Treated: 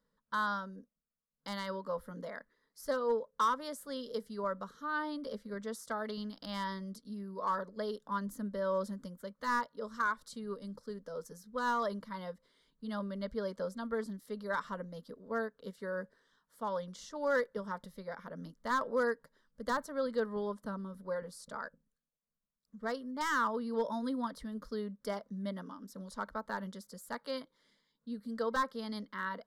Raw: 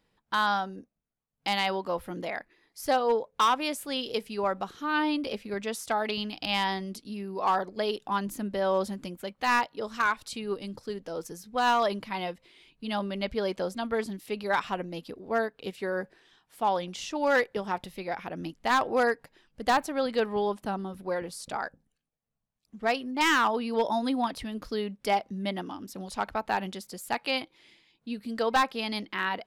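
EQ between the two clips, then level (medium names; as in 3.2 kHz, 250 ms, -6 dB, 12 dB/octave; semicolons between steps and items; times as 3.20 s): treble shelf 5.9 kHz -5.5 dB; static phaser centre 510 Hz, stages 8; -5.0 dB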